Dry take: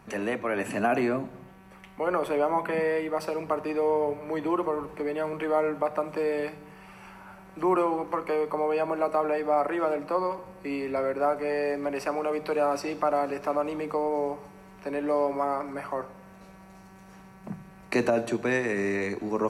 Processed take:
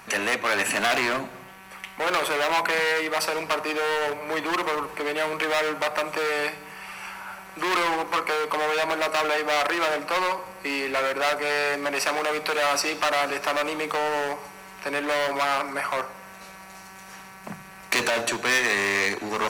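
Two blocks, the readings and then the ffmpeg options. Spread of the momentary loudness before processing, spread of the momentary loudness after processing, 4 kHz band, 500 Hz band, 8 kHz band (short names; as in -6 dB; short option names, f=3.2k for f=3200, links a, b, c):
11 LU, 17 LU, +19.0 dB, -0.5 dB, n/a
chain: -af "asoftclip=type=hard:threshold=-28dB,tiltshelf=f=680:g=-9.5,volume=6dB"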